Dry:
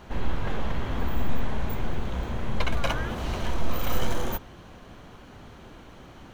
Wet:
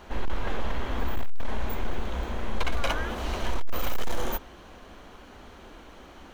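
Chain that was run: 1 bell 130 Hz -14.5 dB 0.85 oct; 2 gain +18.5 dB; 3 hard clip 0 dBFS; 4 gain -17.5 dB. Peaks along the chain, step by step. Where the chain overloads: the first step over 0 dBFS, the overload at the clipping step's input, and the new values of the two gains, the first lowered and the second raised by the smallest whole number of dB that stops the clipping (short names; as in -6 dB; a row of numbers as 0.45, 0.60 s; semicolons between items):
-11.0, +7.5, 0.0, -17.5 dBFS; step 2, 7.5 dB; step 2 +10.5 dB, step 4 -9.5 dB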